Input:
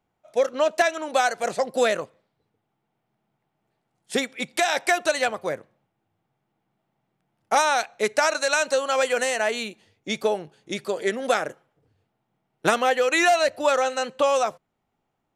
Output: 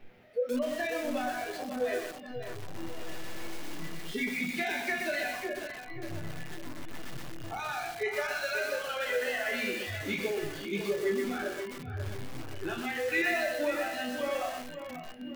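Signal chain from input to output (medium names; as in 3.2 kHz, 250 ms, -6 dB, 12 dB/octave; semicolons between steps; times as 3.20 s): jump at every zero crossing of -19 dBFS; treble shelf 4.1 kHz -9 dB; chord resonator E2 minor, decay 0.39 s; peak limiter -26 dBFS, peak gain reduction 8.5 dB; ten-band graphic EQ 250 Hz +4 dB, 500 Hz +5 dB, 1 kHz -10 dB, 2 kHz +8 dB, 8 kHz -11 dB; two-band feedback delay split 990 Hz, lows 160 ms, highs 734 ms, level -16 dB; spectral noise reduction 22 dB; hum notches 60/120/180/240/300/360 Hz; tape echo 540 ms, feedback 44%, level -8.5 dB, low-pass 2.6 kHz; bit-crushed delay 123 ms, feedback 35%, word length 7-bit, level -3 dB; trim +1.5 dB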